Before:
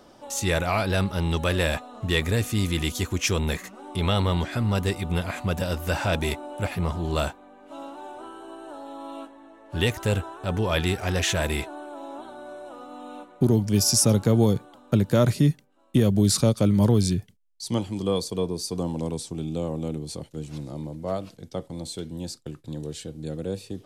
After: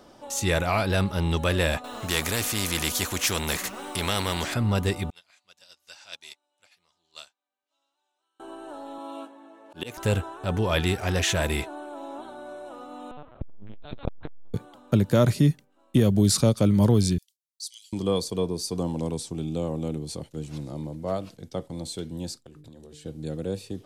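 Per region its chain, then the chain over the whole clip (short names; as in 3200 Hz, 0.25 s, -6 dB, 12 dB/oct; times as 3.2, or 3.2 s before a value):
1.84–4.54 requantised 12-bit, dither triangular + spectral compressor 2:1
5.1–8.4 band-pass 5100 Hz, Q 1.7 + upward expander 2.5:1, over -49 dBFS
8.98–9.98 HPF 190 Hz + notch 1900 Hz, Q 8.1 + auto swell 0.18 s
13.11–14.54 HPF 65 Hz + LPC vocoder at 8 kHz pitch kept + core saturation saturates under 330 Hz
17.18–17.93 inverse Chebyshev high-pass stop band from 640 Hz, stop band 80 dB + short-mantissa float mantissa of 6-bit
22.37–23.06 notches 50/100/150/200/250/300/350/400/450 Hz + compressor 10:1, threshold -43 dBFS
whole clip: dry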